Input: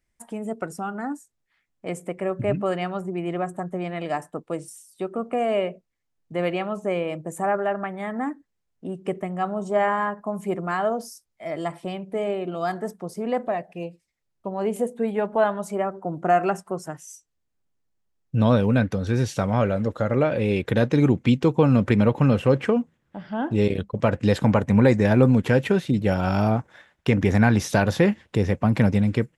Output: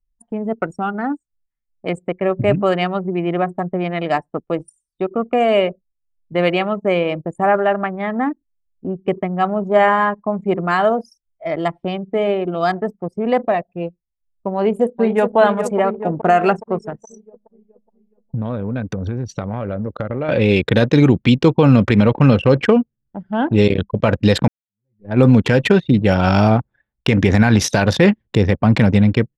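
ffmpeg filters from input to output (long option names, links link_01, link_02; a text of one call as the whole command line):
ffmpeg -i in.wav -filter_complex "[0:a]asettb=1/sr,asplit=3[link_01][link_02][link_03];[link_01]atrim=end=7.174[link_04];[link_02]atrim=start=7.17:end=10.48,asetpts=PTS-STARTPTS,afade=type=in:duration=0.004:curve=qsin,afade=type=out:start_time=3.306:duration=0.004:curve=qsin,highshelf=frequency=5100:gain=-5[link_05];[link_03]atrim=start=10.476[link_06];[link_04][link_05]acrossfade=duration=0.004:curve1=hsin:curve2=qsin[link_07];[link_07][link_06]acrossfade=duration=0.004:curve1=qsin:curve2=hsin,asplit=2[link_08][link_09];[link_09]afade=type=in:start_time=14.56:duration=0.01,afade=type=out:start_time=15.37:duration=0.01,aecho=0:1:420|840|1260|1680|2100|2520|2940|3360|3780|4200|4620:0.398107|0.278675|0.195073|0.136551|0.0955855|0.0669099|0.0468369|0.0327858|0.0229501|0.0160651|0.0112455[link_10];[link_08][link_10]amix=inputs=2:normalize=0,asettb=1/sr,asplit=3[link_11][link_12][link_13];[link_11]atrim=end=16.774[link_14];[link_12]atrim=start=16.77:end=20.29,asetpts=PTS-STARTPTS,afade=type=in:duration=0.004:curve=qsin,afade=type=out:start_time=3.516:duration=0.004:curve=qsin,acompressor=threshold=-27dB:ratio=6:attack=3.2:release=140:knee=1:detection=peak[link_15];[link_13]atrim=start=20.286[link_16];[link_14][link_15]acrossfade=duration=0.004:curve1=hsin:curve2=qsin[link_17];[link_17][link_16]acrossfade=duration=0.004:curve1=qsin:curve2=hsin,asplit=2[link_18][link_19];[link_18]atrim=end=24.48,asetpts=PTS-STARTPTS,afade=type=out:start_time=24.476:duration=0.004:curve=hsin[link_20];[link_19]atrim=start=24.48,asetpts=PTS-STARTPTS,afade=type=in:duration=0.73:curve=exp[link_21];[link_20][link_21]concat=n=2:v=0:a=1,anlmdn=15.8,equalizer=frequency=4100:width_type=o:width=1.6:gain=6.5,alimiter=level_in=9dB:limit=-1dB:release=50:level=0:latency=1,volume=-1dB" out.wav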